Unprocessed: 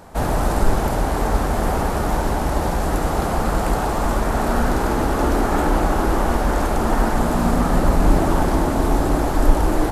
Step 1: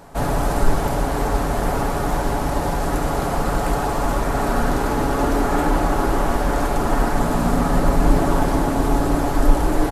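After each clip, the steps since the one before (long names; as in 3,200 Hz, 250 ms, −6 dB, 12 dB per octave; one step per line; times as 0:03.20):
comb filter 7.1 ms, depth 41%
level −1 dB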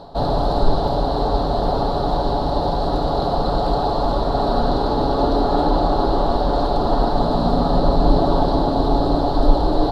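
drawn EQ curve 260 Hz 0 dB, 720 Hz +5 dB, 1,200 Hz −3 dB, 2,300 Hz −19 dB, 4,100 Hz +12 dB, 6,300 Hz −17 dB, 12,000 Hz −23 dB
reversed playback
upward compression, threshold −19 dBFS
reversed playback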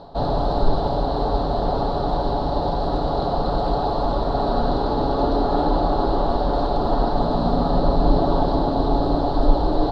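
high-frequency loss of the air 75 metres
level −2 dB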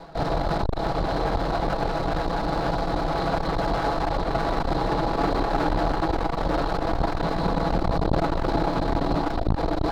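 lower of the sound and its delayed copy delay 6.1 ms
saturating transformer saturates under 240 Hz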